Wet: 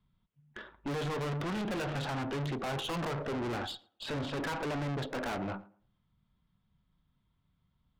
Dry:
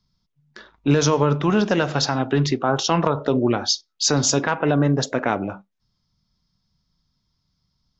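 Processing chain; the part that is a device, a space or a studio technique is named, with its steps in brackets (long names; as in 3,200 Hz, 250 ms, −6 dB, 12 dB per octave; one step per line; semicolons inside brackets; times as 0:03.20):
Butterworth low-pass 3,400 Hz 48 dB per octave
rockabilly slapback (tube saturation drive 33 dB, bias 0.5; tape delay 112 ms, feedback 26%, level −17 dB, low-pass 1,300 Hz)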